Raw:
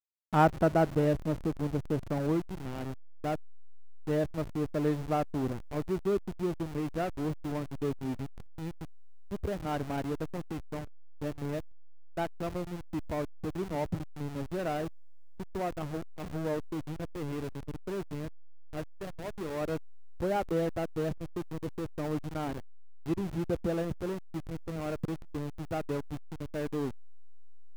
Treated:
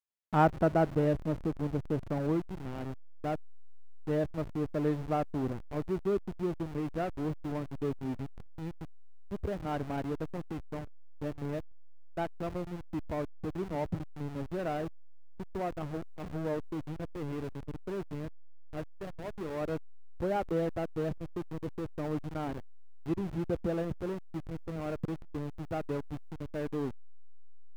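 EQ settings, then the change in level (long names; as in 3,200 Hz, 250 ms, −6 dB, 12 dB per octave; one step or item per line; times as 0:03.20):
high-shelf EQ 4,000 Hz −7.5 dB
−1.0 dB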